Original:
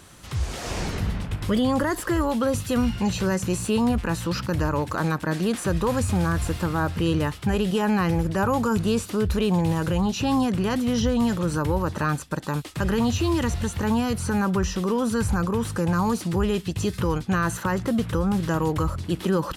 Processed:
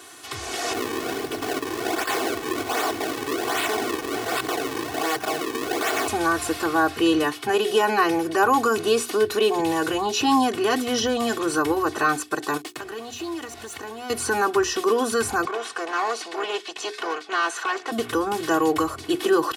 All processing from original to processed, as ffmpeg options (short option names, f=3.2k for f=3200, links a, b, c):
-filter_complex "[0:a]asettb=1/sr,asplit=3[a][b][c];[a]atrim=end=0.734[d];[b]atrim=start=0.73:end=6.08,asetpts=PTS-STARTPTS,afade=t=in:d=0.004:c=qsin,afade=t=out:st=5.346:d=0.004:c=qsin,bass=f=250:g=8,treble=f=4k:g=7,acrusher=samples=36:mix=1:aa=0.000001:lfo=1:lforange=57.6:lforate=1.3,aeval=exprs='0.0631*(abs(mod(val(0)/0.0631+3,4)-2)-1)':c=same[e];[c]atrim=start=6.076[f];[d][e]acrossfade=d=0.004:c1=hsin:c2=qsin[g];[g][f]acrossfade=d=0.004:c1=qsin:c2=hsin,asettb=1/sr,asplit=3[h][i][j];[h]atrim=end=7.234[k];[i]atrim=start=7.23:end=9.6,asetpts=PTS-STARTPTS,afade=t=in:d=0.004:c=qsin,afade=t=out:st=2.366:d=0.004:c=qsin,highpass=f=100:w=0.5412,highpass=f=100:w=1.3066,bandreject=f=7.4k:w=24[l];[j]atrim=start=9.596[m];[k][l]acrossfade=d=0.004:c1=hsin:c2=qsin[n];[n][m]acrossfade=d=0.004:c1=qsin:c2=hsin,asettb=1/sr,asplit=3[o][p][q];[o]atrim=end=12.574[r];[p]atrim=start=12.57:end=14.1,asetpts=PTS-STARTPTS,afade=t=in:d=0.004:c=qsin,afade=t=out:st=1.526:d=0.004:c=qsin,acompressor=threshold=-30dB:ratio=12:attack=3.2:release=140:knee=1:detection=peak,aeval=exprs='sgn(val(0))*max(abs(val(0))-0.00422,0)':c=same[s];[q]atrim=start=14.096[t];[r][s]acrossfade=d=0.004:c1=hsin:c2=qsin[u];[u][t]acrossfade=d=0.004:c1=qsin:c2=hsin,asettb=1/sr,asplit=3[v][w][x];[v]atrim=end=15.454[y];[w]atrim=start=15.45:end=17.92,asetpts=PTS-STARTPTS,afade=t=in:d=0.004:c=qsin,afade=t=out:st=2.466:d=0.004:c=qsin,aeval=exprs='clip(val(0),-1,0.0355)':c=same,highpass=580,lowpass=5.9k[z];[x]atrim=start=17.916[aa];[y][z]acrossfade=d=0.004:c1=hsin:c2=qsin[ab];[ab][aa]acrossfade=d=0.004:c1=qsin:c2=hsin,highpass=300,bandreject=f=60:t=h:w=6,bandreject=f=120:t=h:w=6,bandreject=f=180:t=h:w=6,bandreject=f=240:t=h:w=6,bandreject=f=300:t=h:w=6,bandreject=f=360:t=h:w=6,bandreject=f=420:t=h:w=6,aecho=1:1:2.7:0.96,volume=3.5dB"